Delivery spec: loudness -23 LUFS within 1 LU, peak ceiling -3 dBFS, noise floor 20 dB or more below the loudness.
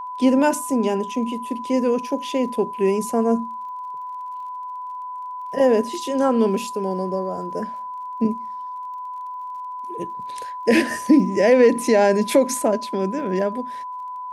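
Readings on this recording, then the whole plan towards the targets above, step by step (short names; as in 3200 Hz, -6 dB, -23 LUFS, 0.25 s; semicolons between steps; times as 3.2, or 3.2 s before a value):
ticks 31/s; steady tone 1000 Hz; tone level -29 dBFS; loudness -21.0 LUFS; peak -5.0 dBFS; loudness target -23.0 LUFS
-> de-click; notch 1000 Hz, Q 30; gain -2 dB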